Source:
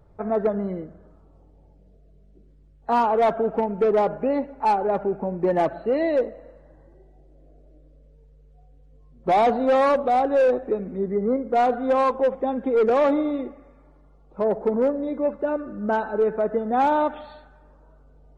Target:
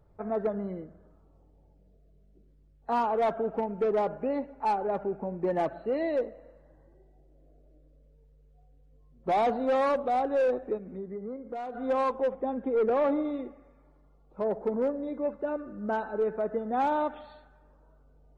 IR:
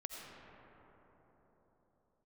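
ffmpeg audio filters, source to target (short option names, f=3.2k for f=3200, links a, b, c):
-filter_complex "[0:a]asplit=3[a][b][c];[a]afade=t=out:st=10.77:d=0.02[d];[b]acompressor=threshold=-28dB:ratio=6,afade=t=in:st=10.77:d=0.02,afade=t=out:st=11.74:d=0.02[e];[c]afade=t=in:st=11.74:d=0.02[f];[d][e][f]amix=inputs=3:normalize=0,asettb=1/sr,asplit=3[g][h][i];[g]atrim=end=12.334[j];[h]atrim=start=12.33:end=13.25,asetpts=PTS-STARTPTS,afade=t=in:d=0.004:c=qsin,afade=t=out:st=0.916:d=0.004:c=qsin,aemphasis=mode=reproduction:type=75fm[k];[i]atrim=start=13.246[l];[j][k]acrossfade=d=0.004:c1=hsin:c2=qsin[m];[m][l]acrossfade=d=0.004:c1=qsin:c2=hsin,volume=-7dB"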